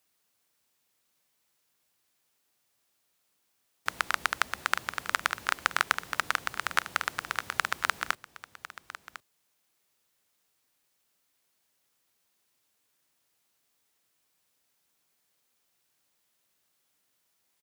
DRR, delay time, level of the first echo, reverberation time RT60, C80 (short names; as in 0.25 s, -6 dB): none, 1.052 s, -15.0 dB, none, none